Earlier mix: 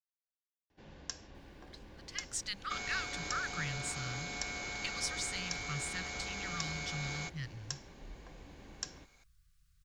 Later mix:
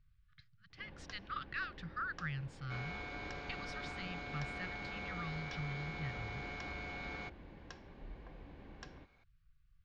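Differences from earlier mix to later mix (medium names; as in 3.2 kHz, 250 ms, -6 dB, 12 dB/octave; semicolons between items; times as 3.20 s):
speech: entry -1.35 s; master: add distance through air 340 m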